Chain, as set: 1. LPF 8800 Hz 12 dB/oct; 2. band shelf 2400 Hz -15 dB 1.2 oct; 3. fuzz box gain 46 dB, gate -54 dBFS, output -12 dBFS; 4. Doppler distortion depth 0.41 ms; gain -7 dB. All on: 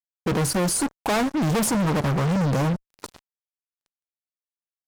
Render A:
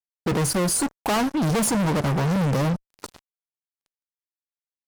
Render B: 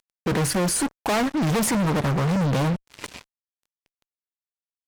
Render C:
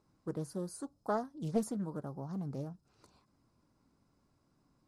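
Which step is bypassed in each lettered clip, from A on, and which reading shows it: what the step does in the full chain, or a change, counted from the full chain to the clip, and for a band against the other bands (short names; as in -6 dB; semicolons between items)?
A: 4, momentary loudness spread change +3 LU; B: 2, momentary loudness spread change +6 LU; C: 3, distortion -1 dB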